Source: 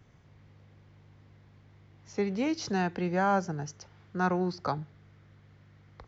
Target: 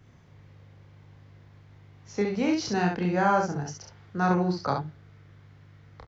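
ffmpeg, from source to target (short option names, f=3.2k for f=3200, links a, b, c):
-af "aecho=1:1:29|67:0.596|0.631,volume=1.5dB"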